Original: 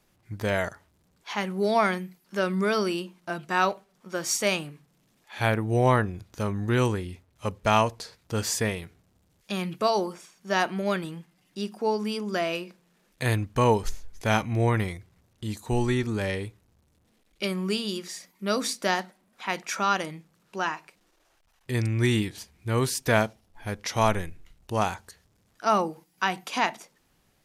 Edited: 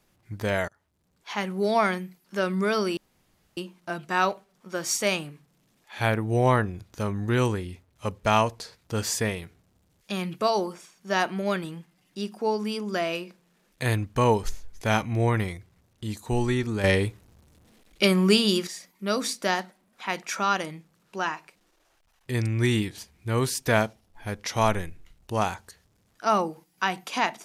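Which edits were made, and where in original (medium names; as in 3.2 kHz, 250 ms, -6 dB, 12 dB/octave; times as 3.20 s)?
0.68–1.38 s: fade in, from -23.5 dB
2.97 s: insert room tone 0.60 s
16.24–18.07 s: gain +8.5 dB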